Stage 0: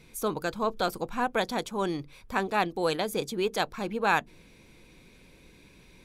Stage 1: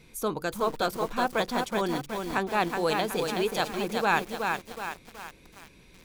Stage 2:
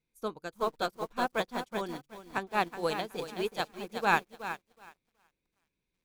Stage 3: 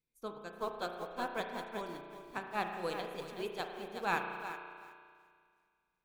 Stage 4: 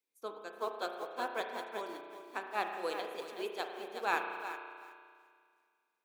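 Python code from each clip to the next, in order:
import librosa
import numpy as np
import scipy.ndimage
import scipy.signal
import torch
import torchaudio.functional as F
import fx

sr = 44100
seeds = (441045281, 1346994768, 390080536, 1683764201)

y1 = fx.echo_crushed(x, sr, ms=372, feedback_pct=55, bits=7, wet_db=-4)
y2 = fx.upward_expand(y1, sr, threshold_db=-42.0, expansion=2.5)
y3 = fx.rev_spring(y2, sr, rt60_s=2.1, pass_ms=(34,), chirp_ms=75, drr_db=4.0)
y3 = y3 * 10.0 ** (-7.5 / 20.0)
y4 = scipy.signal.sosfilt(scipy.signal.butter(4, 290.0, 'highpass', fs=sr, output='sos'), y3)
y4 = y4 * 10.0 ** (1.0 / 20.0)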